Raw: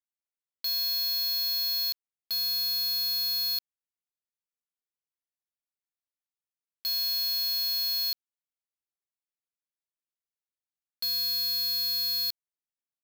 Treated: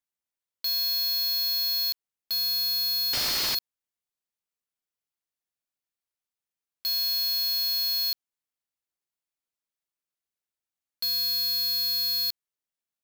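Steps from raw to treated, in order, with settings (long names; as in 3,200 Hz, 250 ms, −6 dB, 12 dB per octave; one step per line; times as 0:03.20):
0:03.13–0:03.55: sample-rate reduction 9,300 Hz, jitter 20%
level +2 dB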